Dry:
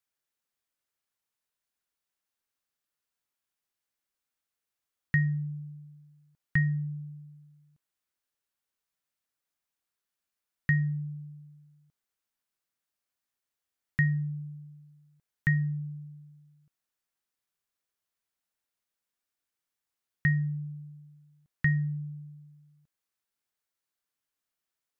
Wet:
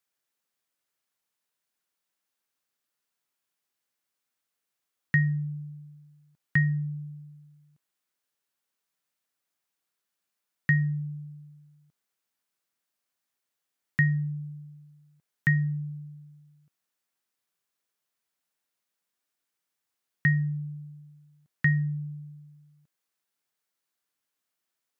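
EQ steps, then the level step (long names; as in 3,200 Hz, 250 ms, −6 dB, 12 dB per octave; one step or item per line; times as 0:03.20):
high-pass filter 120 Hz
+3.5 dB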